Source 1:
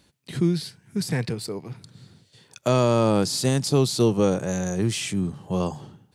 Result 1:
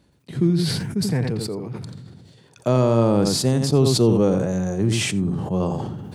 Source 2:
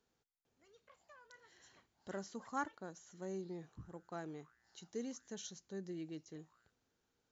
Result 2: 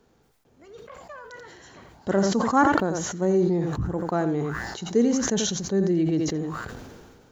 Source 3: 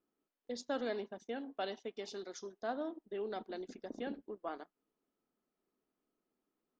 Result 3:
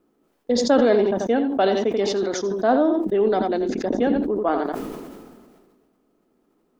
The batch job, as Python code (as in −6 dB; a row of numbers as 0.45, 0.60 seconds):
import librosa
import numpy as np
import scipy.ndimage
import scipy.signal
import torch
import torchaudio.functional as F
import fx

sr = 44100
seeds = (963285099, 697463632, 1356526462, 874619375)

p1 = fx.tilt_shelf(x, sr, db=5.5, hz=1400.0)
p2 = p1 + fx.echo_single(p1, sr, ms=86, db=-10.5, dry=0)
p3 = fx.sustainer(p2, sr, db_per_s=32.0)
y = p3 * 10.0 ** (-6 / 20.0) / np.max(np.abs(p3))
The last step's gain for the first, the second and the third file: −3.0, +17.0, +16.0 decibels